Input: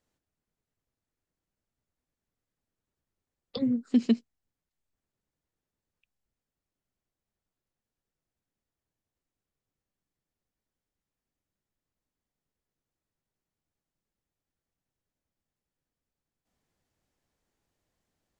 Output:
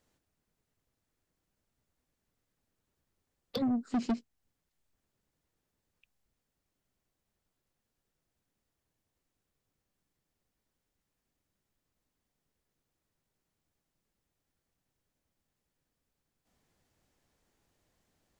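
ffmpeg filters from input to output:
ffmpeg -i in.wav -filter_complex "[0:a]asplit=2[link_01][link_02];[link_02]acompressor=threshold=-38dB:ratio=6,volume=-1.5dB[link_03];[link_01][link_03]amix=inputs=2:normalize=0,asoftclip=type=tanh:threshold=-26dB" out.wav

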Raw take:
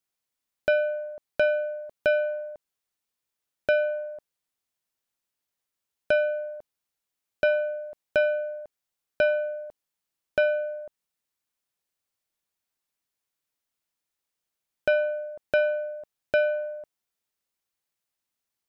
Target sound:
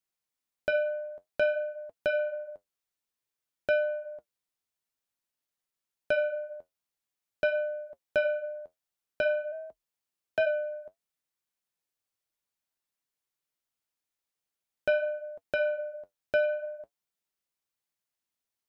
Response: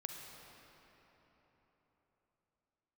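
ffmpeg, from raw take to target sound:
-filter_complex "[0:a]asplit=3[link_01][link_02][link_03];[link_01]afade=type=out:start_time=9.51:duration=0.02[link_04];[link_02]afreqshift=37,afade=type=in:start_time=9.51:duration=0.02,afade=type=out:start_time=10.45:duration=0.02[link_05];[link_03]afade=type=in:start_time=10.45:duration=0.02[link_06];[link_04][link_05][link_06]amix=inputs=3:normalize=0,flanger=delay=5.2:depth=6.7:regen=-57:speed=0.52:shape=sinusoidal"

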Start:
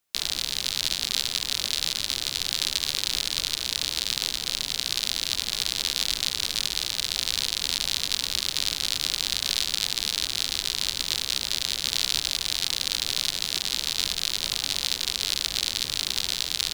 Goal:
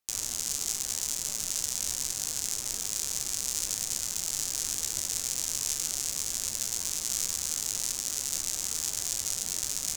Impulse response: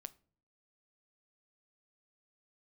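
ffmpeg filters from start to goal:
-af "asetrate=74088,aresample=44100,flanger=delay=8.5:depth=7.9:regen=61:speed=0.76:shape=triangular"

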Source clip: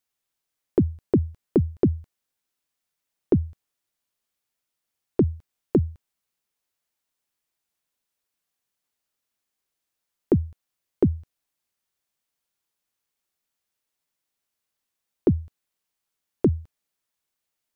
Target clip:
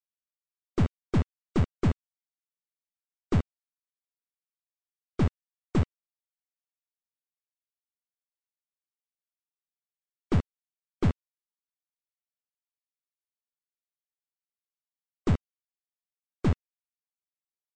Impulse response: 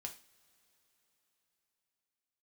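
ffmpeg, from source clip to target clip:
-af "aresample=16000,acrusher=bits=3:mix=0:aa=0.000001,aresample=44100,aeval=exprs='(tanh(15.8*val(0)+0.4)-tanh(0.4))/15.8':channel_layout=same,afftdn=noise_reduction=18:noise_floor=-47,bass=frequency=250:gain=6,treble=frequency=4000:gain=-8"

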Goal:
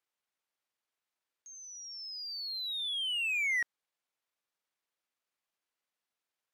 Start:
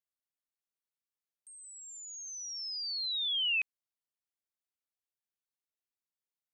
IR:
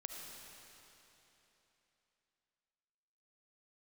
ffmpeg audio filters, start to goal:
-filter_complex "[0:a]asplit=2[link_01][link_02];[link_02]highpass=frequency=720:poles=1,volume=15dB,asoftclip=type=tanh:threshold=-25.5dB[link_03];[link_01][link_03]amix=inputs=2:normalize=0,lowpass=frequency=3500:poles=1,volume=-6dB,asetrate=33038,aresample=44100,atempo=1.33484"

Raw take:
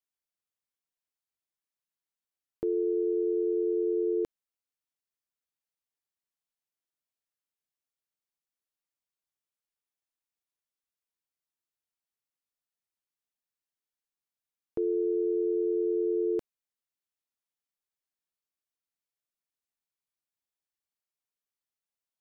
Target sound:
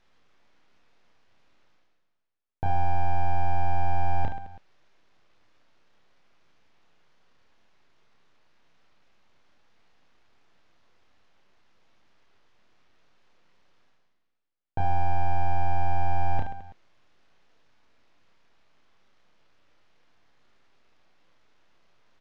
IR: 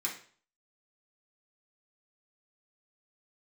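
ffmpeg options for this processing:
-filter_complex "[0:a]areverse,acompressor=mode=upward:threshold=-38dB:ratio=2.5,areverse,aresample=8000,aresample=44100,aeval=exprs='abs(val(0))':channel_layout=same,aemphasis=mode=reproduction:type=75kf,asplit=2[link_01][link_02];[link_02]aecho=0:1:30|72|130.8|213.1|328.4:0.631|0.398|0.251|0.158|0.1[link_03];[link_01][link_03]amix=inputs=2:normalize=0,volume=5dB"

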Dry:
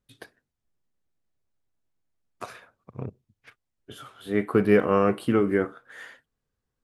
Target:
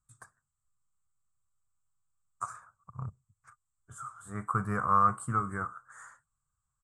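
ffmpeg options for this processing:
ffmpeg -i in.wav -af "firequalizer=gain_entry='entry(130,0);entry(270,-20);entry(410,-21);entry(1200,9);entry(1800,-12);entry(2900,-29);entry(4700,-16);entry(7800,15);entry(11000,-11)':delay=0.05:min_phase=1,volume=-1.5dB" out.wav

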